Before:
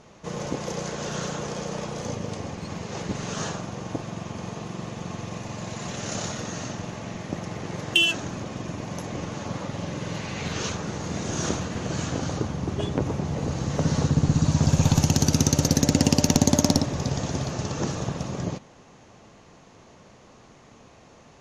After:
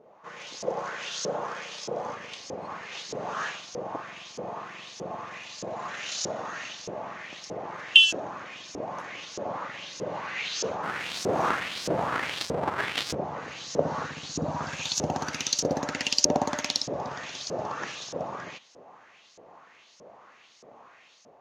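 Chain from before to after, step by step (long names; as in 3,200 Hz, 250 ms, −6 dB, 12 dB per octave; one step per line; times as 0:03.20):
0:10.83–0:13.15: each half-wave held at its own peak
automatic gain control gain up to 5.5 dB
auto-filter band-pass saw up 1.6 Hz 440–5,900 Hz
level +2.5 dB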